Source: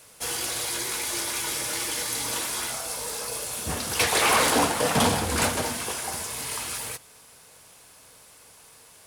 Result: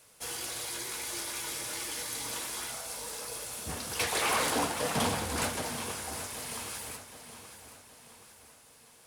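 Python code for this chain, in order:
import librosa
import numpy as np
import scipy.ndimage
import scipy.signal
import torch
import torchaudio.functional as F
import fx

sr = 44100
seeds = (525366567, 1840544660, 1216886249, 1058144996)

y = fx.echo_feedback(x, sr, ms=773, feedback_pct=47, wet_db=-12)
y = y * librosa.db_to_amplitude(-8.0)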